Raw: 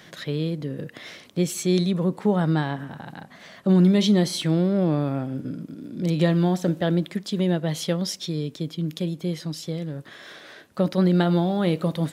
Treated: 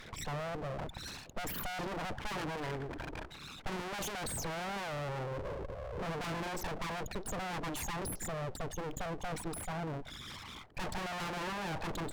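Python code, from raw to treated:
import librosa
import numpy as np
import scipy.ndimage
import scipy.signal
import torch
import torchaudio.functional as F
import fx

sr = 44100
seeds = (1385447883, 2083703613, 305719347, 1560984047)

y = fx.envelope_sharpen(x, sr, power=3.0)
y = np.abs(y)
y = fx.tube_stage(y, sr, drive_db=25.0, bias=0.8)
y = y * librosa.db_to_amplitude(8.0)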